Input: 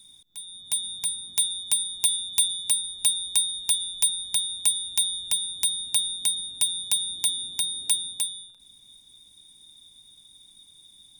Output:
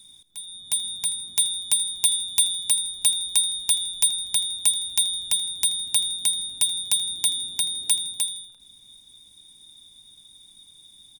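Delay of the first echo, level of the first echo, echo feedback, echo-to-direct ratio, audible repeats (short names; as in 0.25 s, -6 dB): 81 ms, -19.0 dB, 46%, -18.0 dB, 3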